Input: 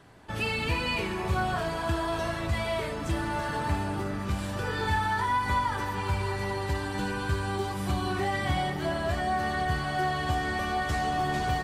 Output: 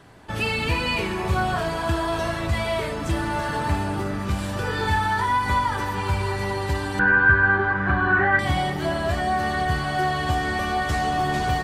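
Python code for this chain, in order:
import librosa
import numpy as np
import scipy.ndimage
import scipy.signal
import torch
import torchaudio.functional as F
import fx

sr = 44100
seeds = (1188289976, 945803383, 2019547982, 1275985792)

y = fx.lowpass_res(x, sr, hz=1600.0, q=9.5, at=(6.99, 8.39))
y = F.gain(torch.from_numpy(y), 5.0).numpy()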